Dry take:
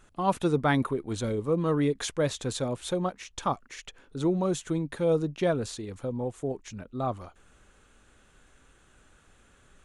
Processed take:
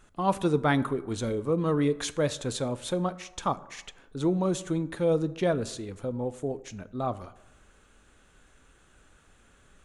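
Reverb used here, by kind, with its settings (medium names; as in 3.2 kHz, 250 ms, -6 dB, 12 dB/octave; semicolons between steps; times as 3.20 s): plate-style reverb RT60 0.92 s, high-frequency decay 0.5×, DRR 14.5 dB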